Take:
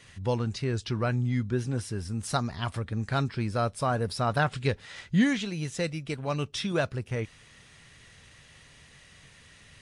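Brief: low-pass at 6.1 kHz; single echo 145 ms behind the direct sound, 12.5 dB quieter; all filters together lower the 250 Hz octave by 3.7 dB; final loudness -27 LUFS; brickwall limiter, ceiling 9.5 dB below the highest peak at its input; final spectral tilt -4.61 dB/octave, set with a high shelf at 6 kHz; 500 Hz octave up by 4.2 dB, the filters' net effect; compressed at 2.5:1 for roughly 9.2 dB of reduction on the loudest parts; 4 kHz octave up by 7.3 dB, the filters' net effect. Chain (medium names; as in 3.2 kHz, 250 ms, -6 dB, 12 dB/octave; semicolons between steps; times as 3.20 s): low-pass 6.1 kHz; peaking EQ 250 Hz -6.5 dB; peaking EQ 500 Hz +6.5 dB; peaking EQ 4 kHz +6.5 dB; treble shelf 6 kHz +9 dB; compression 2.5:1, threshold -33 dBFS; peak limiter -27.5 dBFS; delay 145 ms -12.5 dB; trim +11 dB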